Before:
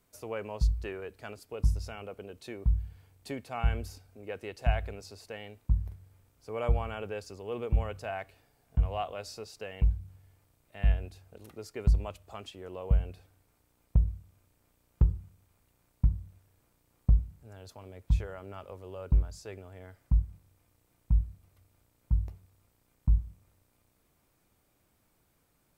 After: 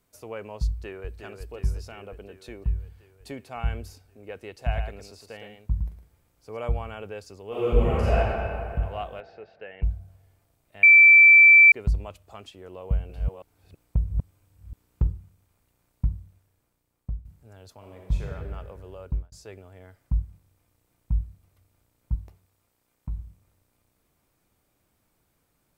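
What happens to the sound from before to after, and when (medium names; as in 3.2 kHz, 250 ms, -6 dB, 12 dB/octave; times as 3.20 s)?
0.68–1.19 s: echo throw 360 ms, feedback 70%, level -6.5 dB
4.61–6.57 s: delay 111 ms -6 dB
7.48–8.17 s: reverb throw, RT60 2.5 s, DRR -11 dB
9.20–9.83 s: cabinet simulation 180–2800 Hz, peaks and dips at 240 Hz -9 dB, 1.1 kHz -9 dB, 1.7 kHz +5 dB
10.83–11.72 s: bleep 2.33 kHz -9 dBFS
12.77–15.07 s: chunks repeated in reverse 327 ms, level -3 dB
16.12–17.25 s: fade out, to -12.5 dB
17.77–18.31 s: reverb throw, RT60 1.7 s, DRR -0.5 dB
18.91–19.32 s: fade out equal-power
22.15–23.19 s: bass shelf 190 Hz -9.5 dB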